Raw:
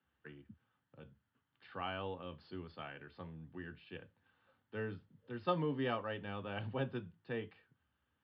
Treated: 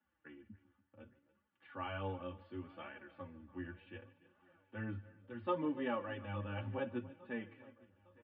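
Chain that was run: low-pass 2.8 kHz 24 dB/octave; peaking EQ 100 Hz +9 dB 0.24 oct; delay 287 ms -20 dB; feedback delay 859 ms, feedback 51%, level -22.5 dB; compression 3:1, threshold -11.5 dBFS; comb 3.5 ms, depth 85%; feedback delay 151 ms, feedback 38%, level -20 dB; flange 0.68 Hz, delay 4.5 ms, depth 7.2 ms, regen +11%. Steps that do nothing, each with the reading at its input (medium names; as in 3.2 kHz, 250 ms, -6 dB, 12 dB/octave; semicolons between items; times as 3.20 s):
compression, threshold -11.5 dBFS: peak at its input -20.5 dBFS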